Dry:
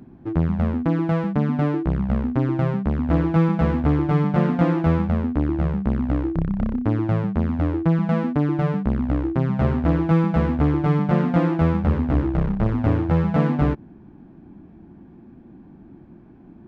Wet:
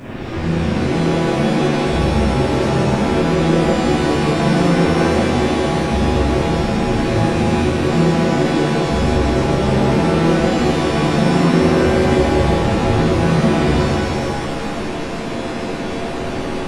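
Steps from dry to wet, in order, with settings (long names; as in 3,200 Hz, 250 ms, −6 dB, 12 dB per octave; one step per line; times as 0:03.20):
linear delta modulator 16 kbit/s, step −23 dBFS
reverb with rising layers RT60 2.1 s, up +7 semitones, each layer −2 dB, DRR −11 dB
level −9 dB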